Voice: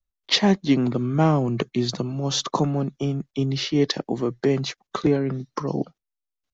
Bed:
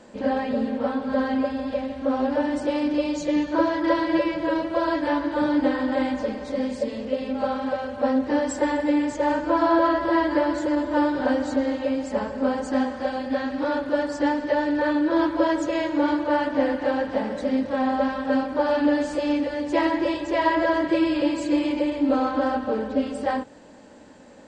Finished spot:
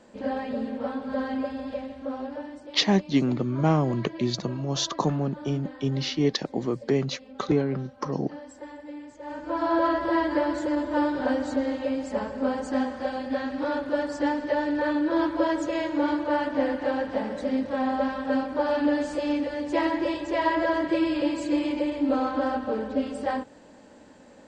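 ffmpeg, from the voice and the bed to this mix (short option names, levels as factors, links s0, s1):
-filter_complex "[0:a]adelay=2450,volume=0.708[s0];[1:a]volume=3.16,afade=t=out:st=1.68:d=0.97:silence=0.223872,afade=t=in:st=9.22:d=0.64:silence=0.16788[s1];[s0][s1]amix=inputs=2:normalize=0"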